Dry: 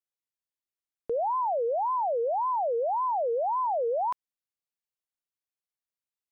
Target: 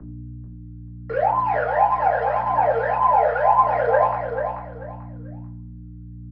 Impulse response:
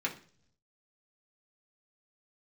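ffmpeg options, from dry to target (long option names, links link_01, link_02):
-filter_complex "[0:a]equalizer=frequency=160:width=1.1:gain=-14.5,bandreject=frequency=980:width=5.4,flanger=delay=18.5:depth=2.3:speed=3,asoftclip=type=hard:threshold=-30dB,aresample=11025,acrusher=bits=3:mode=log:mix=0:aa=0.000001,aresample=44100,aeval=exprs='val(0)+0.00355*(sin(2*PI*60*n/s)+sin(2*PI*2*60*n/s)/2+sin(2*PI*3*60*n/s)/3+sin(2*PI*4*60*n/s)/4+sin(2*PI*5*60*n/s)/5)':channel_layout=same,lowpass=frequency=1400:width_type=q:width=1.8,aphaser=in_gain=1:out_gain=1:delay=1.6:decay=0.53:speed=0.76:type=triangular,acrossover=split=81|190|420[link_01][link_02][link_03][link_04];[link_01]acompressor=threshold=-54dB:ratio=4[link_05];[link_02]acompressor=threshold=-58dB:ratio=4[link_06];[link_03]acompressor=threshold=-55dB:ratio=4[link_07];[link_04]acompressor=threshold=-28dB:ratio=4[link_08];[link_05][link_06][link_07][link_08]amix=inputs=4:normalize=0,aecho=1:1:439|878|1317:0.447|0.116|0.0302[link_09];[1:a]atrim=start_sample=2205,asetrate=32634,aresample=44100[link_10];[link_09][link_10]afir=irnorm=-1:irlink=0,volume=7.5dB"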